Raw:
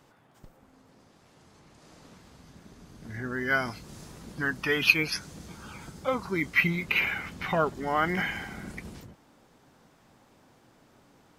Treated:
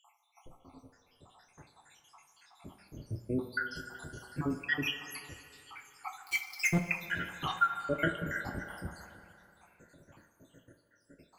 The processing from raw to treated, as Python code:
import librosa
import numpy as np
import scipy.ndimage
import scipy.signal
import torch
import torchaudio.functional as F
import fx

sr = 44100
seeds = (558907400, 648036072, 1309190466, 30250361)

p1 = fx.spec_dropout(x, sr, seeds[0], share_pct=85)
p2 = fx.leveller(p1, sr, passes=5, at=(6.24, 6.82))
p3 = fx.rider(p2, sr, range_db=4, speed_s=0.5)
p4 = p3 + fx.echo_wet_bandpass(p3, sr, ms=75, feedback_pct=83, hz=880.0, wet_db=-13.0, dry=0)
y = fx.rev_double_slope(p4, sr, seeds[1], early_s=0.26, late_s=2.5, knee_db=-18, drr_db=2.5)